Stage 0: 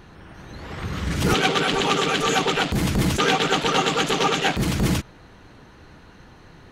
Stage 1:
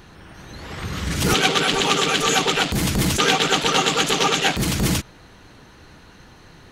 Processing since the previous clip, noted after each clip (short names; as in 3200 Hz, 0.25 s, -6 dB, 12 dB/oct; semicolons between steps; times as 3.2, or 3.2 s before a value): high shelf 3200 Hz +8 dB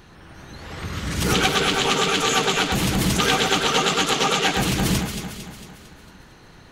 echo with dull and thin repeats by turns 0.113 s, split 2200 Hz, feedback 72%, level -4 dB; gain -2.5 dB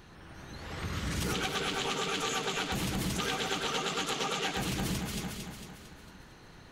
compressor, threshold -24 dBFS, peak gain reduction 9.5 dB; gain -5.5 dB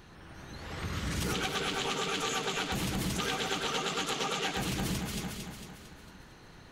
nothing audible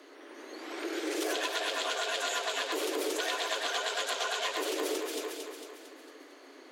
frequency shift +250 Hz